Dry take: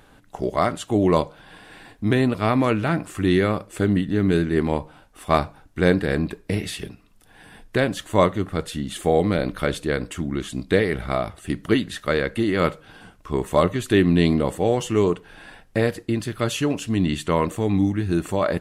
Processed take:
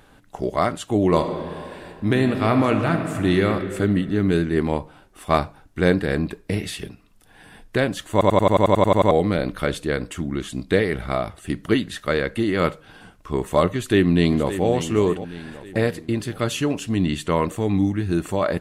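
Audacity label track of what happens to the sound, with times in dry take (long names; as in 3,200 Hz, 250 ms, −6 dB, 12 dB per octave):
1.060000	3.470000	thrown reverb, RT60 2.3 s, DRR 5.5 dB
8.120000	8.120000	stutter in place 0.09 s, 11 plays
13.660000	14.670000	delay throw 570 ms, feedback 50%, level −12 dB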